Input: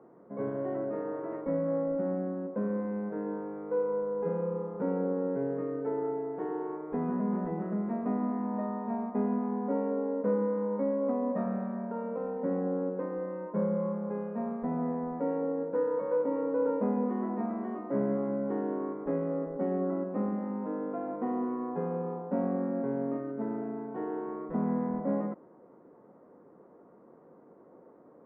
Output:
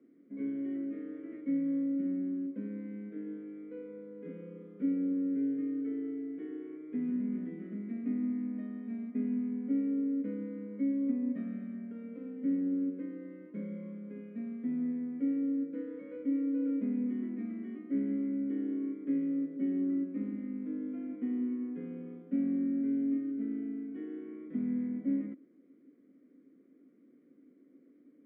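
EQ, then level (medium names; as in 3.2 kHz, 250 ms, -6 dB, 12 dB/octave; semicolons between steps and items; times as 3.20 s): vowel filter i; treble shelf 2 kHz +10.5 dB; +5.0 dB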